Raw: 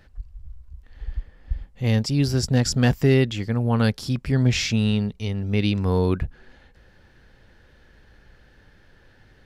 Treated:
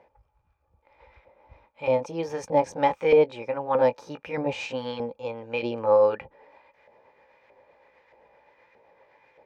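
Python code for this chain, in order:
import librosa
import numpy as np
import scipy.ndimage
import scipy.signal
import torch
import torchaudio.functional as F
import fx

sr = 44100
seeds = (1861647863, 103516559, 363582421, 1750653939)

y = fx.pitch_heads(x, sr, semitones=2.5)
y = fx.small_body(y, sr, hz=(520.0, 840.0, 2400.0), ring_ms=30, db=16)
y = fx.filter_lfo_bandpass(y, sr, shape='saw_up', hz=1.6, low_hz=690.0, high_hz=1600.0, q=1.1)
y = F.gain(torch.from_numpy(y), -1.5).numpy()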